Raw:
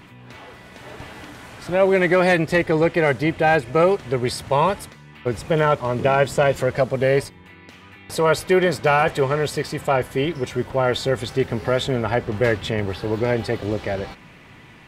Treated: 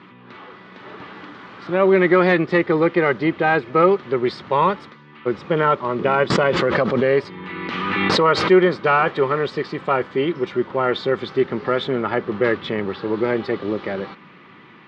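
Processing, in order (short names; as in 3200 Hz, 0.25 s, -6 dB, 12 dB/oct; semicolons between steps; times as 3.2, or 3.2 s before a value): speaker cabinet 190–4100 Hz, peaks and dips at 190 Hz +6 dB, 360 Hz +5 dB, 670 Hz -6 dB, 1200 Hz +8 dB, 2600 Hz -3 dB; 6.3–8.51 backwards sustainer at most 23 dB/s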